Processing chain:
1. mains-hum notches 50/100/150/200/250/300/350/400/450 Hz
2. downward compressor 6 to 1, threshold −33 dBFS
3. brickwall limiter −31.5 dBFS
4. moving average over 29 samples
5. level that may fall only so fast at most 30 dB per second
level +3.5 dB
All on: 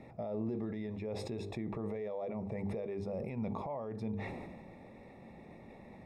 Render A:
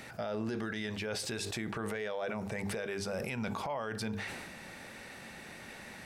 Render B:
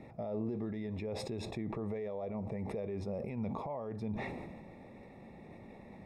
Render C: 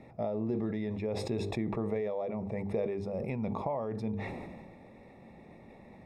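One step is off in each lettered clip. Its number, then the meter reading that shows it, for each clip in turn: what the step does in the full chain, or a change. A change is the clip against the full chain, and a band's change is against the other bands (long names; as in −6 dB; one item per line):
4, 4 kHz band +14.0 dB
1, 4 kHz band +3.0 dB
3, average gain reduction 2.0 dB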